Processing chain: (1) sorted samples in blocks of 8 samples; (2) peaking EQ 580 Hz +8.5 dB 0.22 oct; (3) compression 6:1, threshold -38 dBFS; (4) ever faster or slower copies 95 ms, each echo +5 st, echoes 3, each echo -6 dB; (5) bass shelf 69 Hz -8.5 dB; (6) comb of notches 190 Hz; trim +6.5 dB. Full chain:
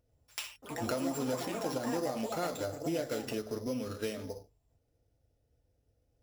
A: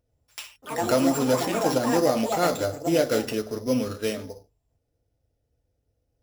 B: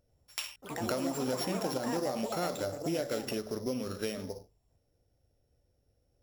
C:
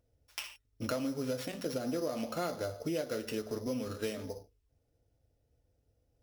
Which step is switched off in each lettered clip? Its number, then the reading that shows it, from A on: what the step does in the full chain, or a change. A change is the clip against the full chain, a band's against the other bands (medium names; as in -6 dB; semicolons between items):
3, mean gain reduction 9.0 dB; 6, 4 kHz band +2.0 dB; 4, loudness change -1.0 LU